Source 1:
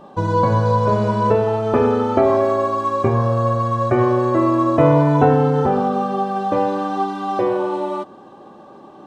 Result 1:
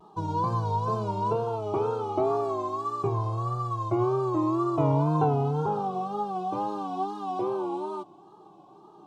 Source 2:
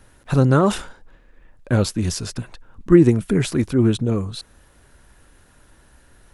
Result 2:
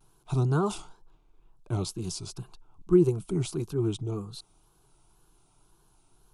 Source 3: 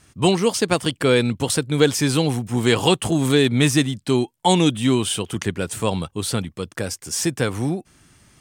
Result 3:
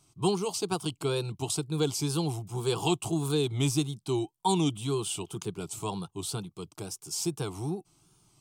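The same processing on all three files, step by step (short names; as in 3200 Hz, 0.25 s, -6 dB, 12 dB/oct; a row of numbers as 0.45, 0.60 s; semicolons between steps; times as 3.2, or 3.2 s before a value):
fixed phaser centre 360 Hz, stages 8; wow and flutter 99 cents; gain -8 dB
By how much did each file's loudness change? -10.5, -9.5, -10.5 LU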